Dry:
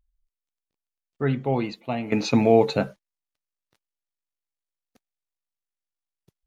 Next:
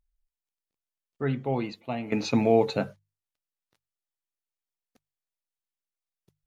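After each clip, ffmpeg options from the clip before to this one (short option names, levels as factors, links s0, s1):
-af "bandreject=f=50:t=h:w=6,bandreject=f=100:t=h:w=6,bandreject=f=150:t=h:w=6,volume=0.631"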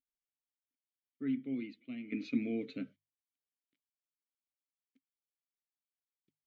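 -filter_complex "[0:a]asplit=3[s0][s1][s2];[s0]bandpass=f=270:t=q:w=8,volume=1[s3];[s1]bandpass=f=2290:t=q:w=8,volume=0.501[s4];[s2]bandpass=f=3010:t=q:w=8,volume=0.355[s5];[s3][s4][s5]amix=inputs=3:normalize=0,equalizer=f=1300:t=o:w=0.28:g=5"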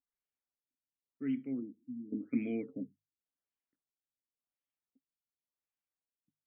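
-af "afftfilt=real='re*lt(b*sr/1024,310*pow(3400/310,0.5+0.5*sin(2*PI*0.91*pts/sr)))':imag='im*lt(b*sr/1024,310*pow(3400/310,0.5+0.5*sin(2*PI*0.91*pts/sr)))':win_size=1024:overlap=0.75"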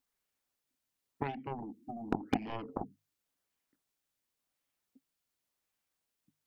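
-af "acompressor=threshold=0.00794:ratio=8,aeval=exprs='0.0178*(cos(1*acos(clip(val(0)/0.0178,-1,1)))-cos(1*PI/2))+0.00891*(cos(3*acos(clip(val(0)/0.0178,-1,1)))-cos(3*PI/2))+0.0001*(cos(6*acos(clip(val(0)/0.0178,-1,1)))-cos(6*PI/2))+0.000126*(cos(7*acos(clip(val(0)/0.0178,-1,1)))-cos(7*PI/2))':c=same,volume=5.62"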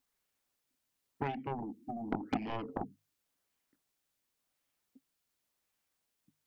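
-af "asoftclip=type=tanh:threshold=0.0596,volume=1.33"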